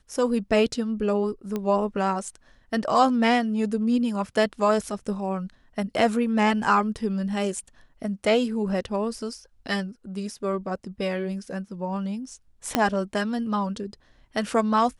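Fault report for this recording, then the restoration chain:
1.56 s: pop -16 dBFS
12.75 s: pop -5 dBFS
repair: de-click

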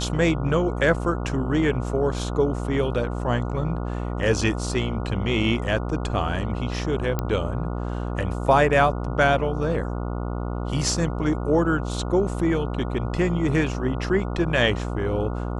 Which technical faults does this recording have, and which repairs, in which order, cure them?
buzz 60 Hz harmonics 24 -28 dBFS
7.19 s: pop -11 dBFS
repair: de-click; de-hum 60 Hz, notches 24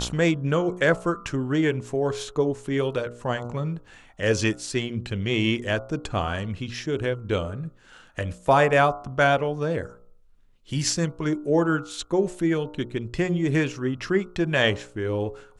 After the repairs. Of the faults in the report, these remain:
7.19 s: pop

